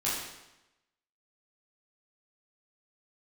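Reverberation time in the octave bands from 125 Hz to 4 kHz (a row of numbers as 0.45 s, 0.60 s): 0.95 s, 0.95 s, 0.95 s, 0.95 s, 0.90 s, 0.85 s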